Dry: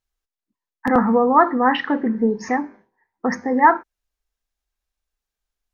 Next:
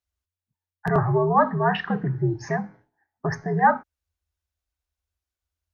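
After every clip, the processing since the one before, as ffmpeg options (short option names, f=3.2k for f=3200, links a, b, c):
-af "afreqshift=-89,volume=-4.5dB"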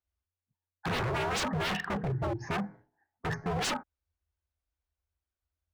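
-af "highshelf=f=3k:g=-11.5,aeval=exprs='0.0596*(abs(mod(val(0)/0.0596+3,4)-2)-1)':c=same,volume=-1.5dB"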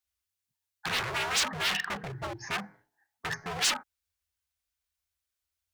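-af "tiltshelf=f=1.1k:g=-9"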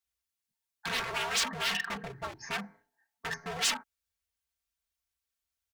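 -af "aecho=1:1:4.4:0.65,volume=-3.5dB"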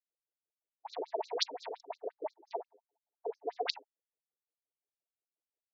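-af "asuperstop=centerf=1900:order=12:qfactor=0.62,adynamicsmooth=sensitivity=5.5:basefreq=810,afftfilt=real='re*between(b*sr/1024,380*pow(5500/380,0.5+0.5*sin(2*PI*5.7*pts/sr))/1.41,380*pow(5500/380,0.5+0.5*sin(2*PI*5.7*pts/sr))*1.41)':imag='im*between(b*sr/1024,380*pow(5500/380,0.5+0.5*sin(2*PI*5.7*pts/sr))/1.41,380*pow(5500/380,0.5+0.5*sin(2*PI*5.7*pts/sr))*1.41)':win_size=1024:overlap=0.75,volume=11dB"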